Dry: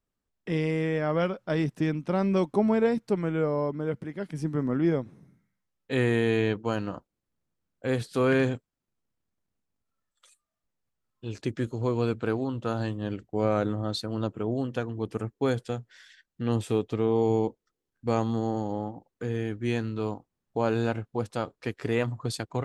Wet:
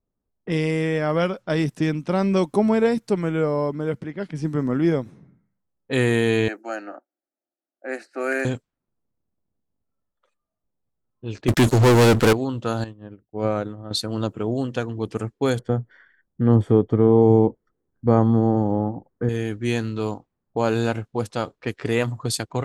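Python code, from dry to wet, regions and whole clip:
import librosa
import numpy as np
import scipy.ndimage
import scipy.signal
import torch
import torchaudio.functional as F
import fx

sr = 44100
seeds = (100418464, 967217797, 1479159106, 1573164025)

y = fx.chain(x, sr, fx.highpass(hz=350.0, slope=24),
    fx.fixed_phaser(hz=680.0, stages=8), at=(6.48, 8.45))
y = fx.chain(y, sr, fx.halfwave_gain(db=-3.0),
    fx.leveller(passes=5), at=(11.48, 12.33))
y = fx.chain(y, sr, fx.high_shelf(hz=3800.0, db=-10.0),
    fx.upward_expand(threshold_db=-35.0, expansion=2.5), at=(12.84, 13.91))
y = fx.chain(y, sr, fx.savgol(points=41),
    fx.low_shelf(hz=470.0, db=7.5), at=(15.59, 19.29))
y = fx.high_shelf(y, sr, hz=5400.0, db=10.5)
y = fx.env_lowpass(y, sr, base_hz=780.0, full_db=-25.5)
y = y * 10.0 ** (4.5 / 20.0)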